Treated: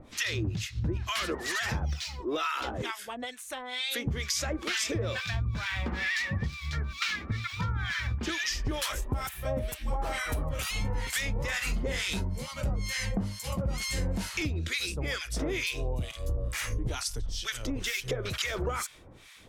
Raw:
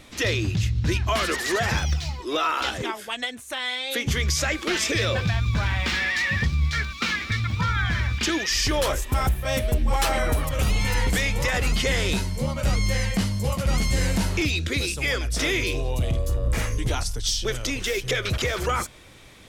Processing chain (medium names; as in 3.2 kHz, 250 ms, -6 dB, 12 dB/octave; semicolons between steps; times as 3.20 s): harmonic tremolo 2.2 Hz, depth 100%, crossover 1.1 kHz; 11.45–12.14 s: doubling 44 ms -8.5 dB; compression 5:1, threshold -27 dBFS, peak gain reduction 8 dB